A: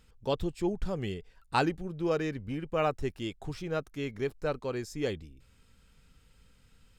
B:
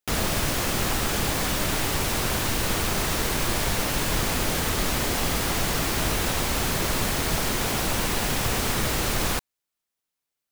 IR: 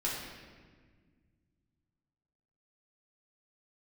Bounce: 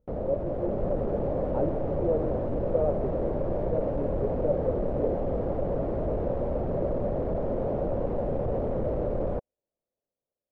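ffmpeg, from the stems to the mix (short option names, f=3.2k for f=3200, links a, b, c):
-filter_complex "[0:a]volume=-12.5dB[a];[1:a]asoftclip=type=tanh:threshold=-28dB,volume=-4.5dB[b];[a][b]amix=inputs=2:normalize=0,lowshelf=f=340:g=4,dynaudnorm=f=150:g=9:m=4dB,lowpass=f=560:t=q:w=4.9"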